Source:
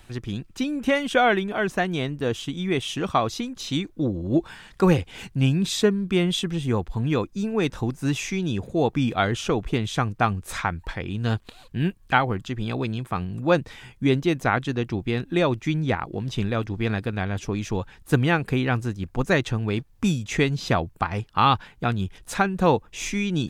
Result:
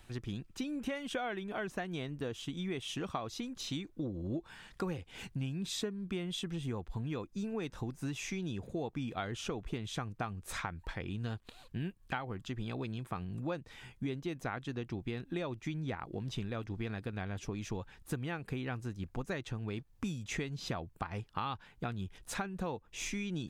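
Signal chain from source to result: compression 6:1, threshold -27 dBFS, peak gain reduction 13.5 dB; trim -7.5 dB

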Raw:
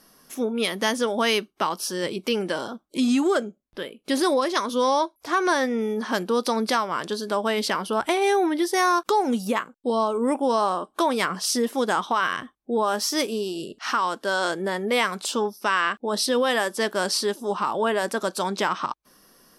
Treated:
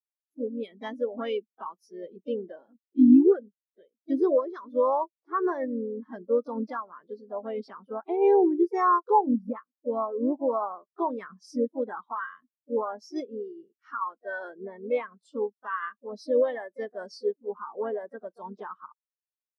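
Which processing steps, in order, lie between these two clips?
harmony voices +3 st -6 dB; spectral contrast expander 2.5:1

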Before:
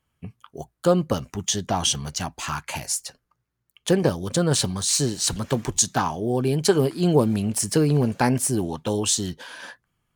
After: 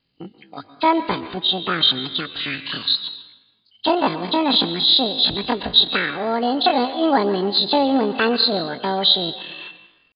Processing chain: knee-point frequency compression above 1.4 kHz 4:1; plate-style reverb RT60 1.1 s, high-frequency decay 0.55×, pre-delay 100 ms, DRR 12 dB; pitch shift +10.5 st; trim +1.5 dB

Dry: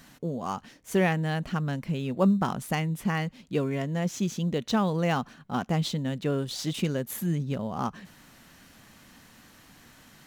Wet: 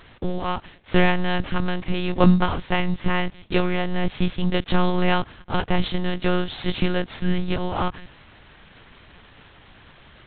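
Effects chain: formants flattened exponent 0.6; monotone LPC vocoder at 8 kHz 180 Hz; trim +7.5 dB

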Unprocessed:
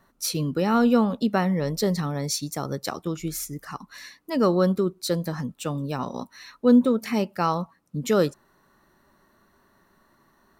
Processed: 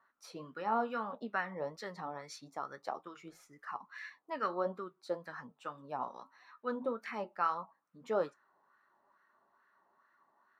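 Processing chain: 3.56–4.47 s: dynamic bell 2.4 kHz, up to +5 dB, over -49 dBFS, Q 1; flange 1.7 Hz, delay 7.4 ms, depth 3 ms, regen -63%; wah-wah 2.3 Hz 770–1600 Hz, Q 2.2; trim +1 dB

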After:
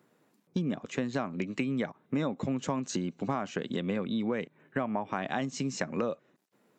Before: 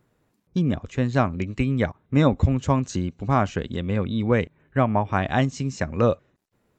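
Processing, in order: high-pass 170 Hz 24 dB/octave; in parallel at +1 dB: peak limiter -15 dBFS, peak gain reduction 9.5 dB; on the sum: compression, threshold -23 dBFS, peak gain reduction 12.5 dB; trim -5 dB

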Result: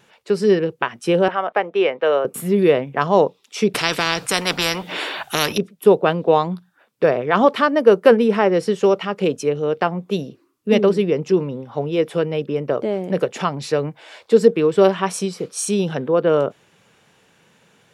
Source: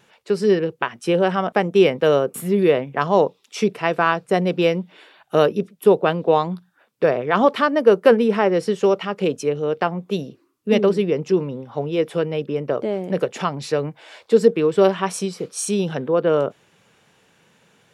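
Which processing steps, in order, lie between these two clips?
1.28–2.25 s: three-band isolator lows -21 dB, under 390 Hz, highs -21 dB, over 3.4 kHz; 3.74–5.58 s: spectrum-flattening compressor 4:1; trim +1.5 dB

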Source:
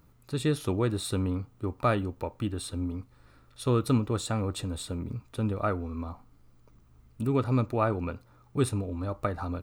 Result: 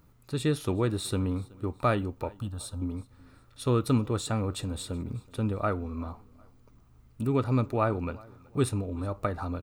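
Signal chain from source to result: 2.34–2.82 s: static phaser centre 880 Hz, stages 4; on a send: feedback delay 375 ms, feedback 35%, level -24 dB

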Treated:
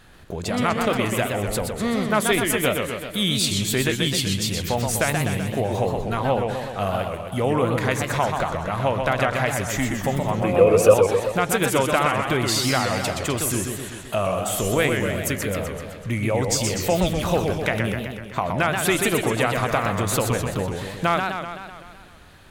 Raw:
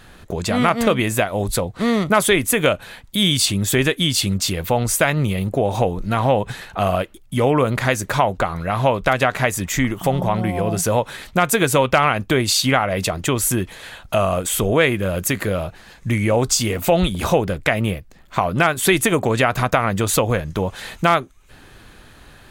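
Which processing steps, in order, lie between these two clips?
10.42–10.94 s: small resonant body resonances 490/1200/2500 Hz, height 18 dB, ringing for 30 ms; modulated delay 127 ms, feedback 63%, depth 202 cents, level -5 dB; trim -5.5 dB

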